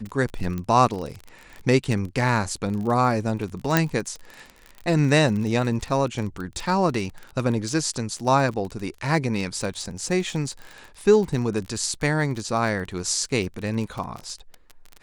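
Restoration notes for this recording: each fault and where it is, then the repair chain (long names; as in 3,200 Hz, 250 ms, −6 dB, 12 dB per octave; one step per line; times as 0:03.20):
surface crackle 27 per second −29 dBFS
0:00.58: click −18 dBFS
0:03.77: click −3 dBFS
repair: click removal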